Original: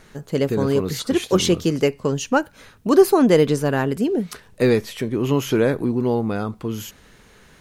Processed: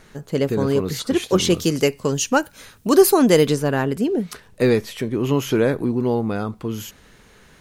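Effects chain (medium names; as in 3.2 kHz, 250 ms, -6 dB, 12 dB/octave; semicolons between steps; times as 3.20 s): 1.50–3.55 s: treble shelf 3.9 kHz +10.5 dB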